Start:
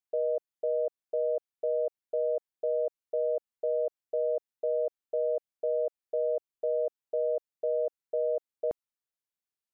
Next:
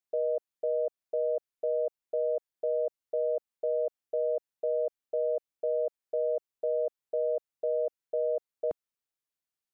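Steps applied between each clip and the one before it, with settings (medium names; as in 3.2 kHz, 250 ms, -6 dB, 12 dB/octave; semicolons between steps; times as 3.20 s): dynamic bell 190 Hz, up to -3 dB, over -48 dBFS, Q 1.4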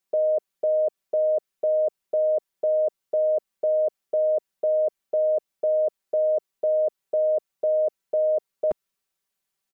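comb 5.2 ms, depth 86%; trim +7 dB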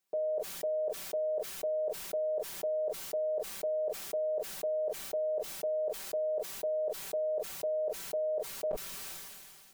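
peak limiter -27.5 dBFS, peak gain reduction 10.5 dB; reverberation, pre-delay 6 ms, DRR 12.5 dB; decay stretcher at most 27 dB/s; trim -1 dB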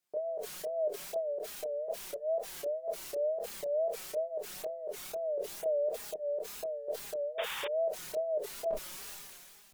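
chorus voices 2, 0.43 Hz, delay 27 ms, depth 2.3 ms; wow and flutter 120 cents; painted sound noise, 7.38–7.68 s, 780–3700 Hz -41 dBFS; trim +1.5 dB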